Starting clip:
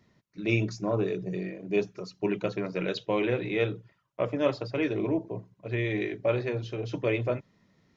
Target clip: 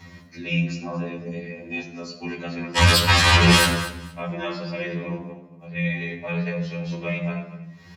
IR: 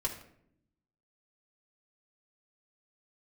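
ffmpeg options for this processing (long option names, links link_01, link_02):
-filter_complex "[0:a]asplit=3[link_01][link_02][link_03];[link_01]afade=type=out:start_time=2.76:duration=0.02[link_04];[link_02]aeval=exprs='0.224*sin(PI/2*8.91*val(0)/0.224)':channel_layout=same,afade=type=in:start_time=2.76:duration=0.02,afade=type=out:start_time=3.64:duration=0.02[link_05];[link_03]afade=type=in:start_time=3.64:duration=0.02[link_06];[link_04][link_05][link_06]amix=inputs=3:normalize=0,equalizer=frequency=360:width=1.1:gain=-13.5,acompressor=mode=upward:threshold=-31dB:ratio=2.5,asettb=1/sr,asplit=3[link_07][link_08][link_09];[link_07]atrim=end=0.744[link_10];[link_08]atrim=start=0.74:end=1.17,asetpts=PTS-STARTPTS,afade=type=in:duration=0.004:curve=qsin,afade=type=out:start_time=0.426:duration=0.004:curve=qsin,highshelf=frequency=4500:gain=-11.5[link_11];[link_09]atrim=start=1.166[link_12];[link_10][link_11]acrossfade=duration=0.004:curve1=hsin:curve2=qsin[link_13];[link_13][link_12]acrossfade=duration=0.004:curve1=qsin:curve2=hsin,asettb=1/sr,asplit=3[link_14][link_15][link_16];[link_14]atrim=end=5.304[link_17];[link_15]atrim=start=5.3:end=5.76,asetpts=PTS-STARTPTS,afade=type=in:duration=0.004:curve=qsin,afade=type=out:start_time=0.456:duration=0.004:curve=qsin,acompressor=threshold=-44dB:ratio=12[link_18];[link_16]atrim=start=5.756[link_19];[link_17][link_18]acrossfade=duration=0.004:curve1=hsin:curve2=qsin[link_20];[link_20][link_19]acrossfade=duration=0.004:curve1=qsin:curve2=hsin,agate=range=-33dB:threshold=-50dB:ratio=3:detection=peak,aecho=1:1:233|466:0.141|0.0268[link_21];[1:a]atrim=start_sample=2205,asetrate=35280,aresample=44100[link_22];[link_21][link_22]afir=irnorm=-1:irlink=0,afreqshift=52,alimiter=level_in=3.5dB:limit=-1dB:release=50:level=0:latency=1,afftfilt=real='re*2*eq(mod(b,4),0)':imag='im*2*eq(mod(b,4),0)':win_size=2048:overlap=0.75,volume=-1.5dB"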